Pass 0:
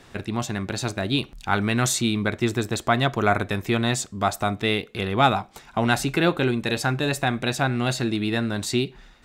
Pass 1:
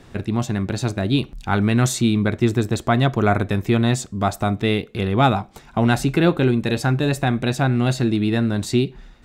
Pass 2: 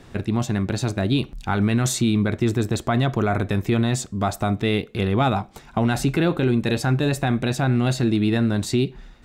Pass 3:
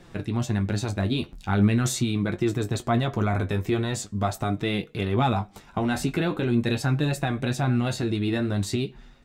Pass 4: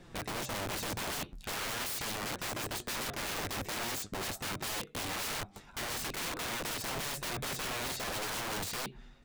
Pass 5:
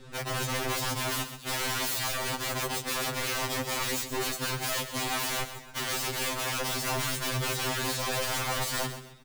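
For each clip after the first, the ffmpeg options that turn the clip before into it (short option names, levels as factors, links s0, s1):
-af "lowshelf=f=490:g=9,volume=0.841"
-af "alimiter=limit=0.266:level=0:latency=1:release=18"
-filter_complex "[0:a]flanger=delay=5.5:depth=6.8:regen=34:speed=0.42:shape=triangular,asplit=2[s0][s1];[s1]adelay=20,volume=0.251[s2];[s0][s2]amix=inputs=2:normalize=0"
-af "aeval=exprs='(mod(23.7*val(0)+1,2)-1)/23.7':c=same,volume=0.596"
-filter_complex "[0:a]asplit=2[s0][s1];[s1]aecho=0:1:129|258|387:0.282|0.0817|0.0237[s2];[s0][s2]amix=inputs=2:normalize=0,afftfilt=real='re*2.45*eq(mod(b,6),0)':imag='im*2.45*eq(mod(b,6),0)':win_size=2048:overlap=0.75,volume=2.51"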